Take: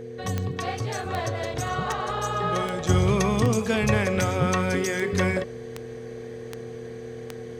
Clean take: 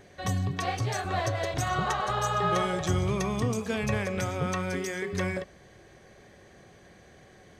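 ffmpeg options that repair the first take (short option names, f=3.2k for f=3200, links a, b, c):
-af "adeclick=t=4,bandreject=f=121.4:t=h:w=4,bandreject=f=242.8:t=h:w=4,bandreject=f=364.2:t=h:w=4,bandreject=f=485.6:t=h:w=4,bandreject=f=450:w=30,asetnsamples=n=441:p=0,asendcmd='2.89 volume volume -6.5dB',volume=0dB"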